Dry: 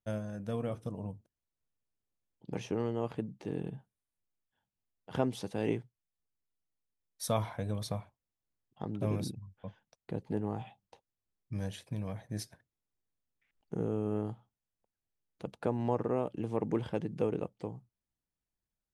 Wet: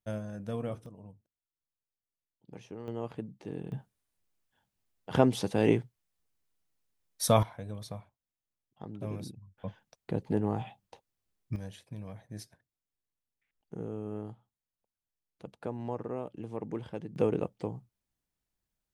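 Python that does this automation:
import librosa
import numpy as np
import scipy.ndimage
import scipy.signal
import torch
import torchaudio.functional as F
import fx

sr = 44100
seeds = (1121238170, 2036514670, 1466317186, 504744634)

y = fx.gain(x, sr, db=fx.steps((0.0, 0.0), (0.86, -10.0), (2.88, -2.5), (3.72, 7.5), (7.43, -5.0), (9.58, 5.0), (11.56, -5.0), (17.16, 4.0)))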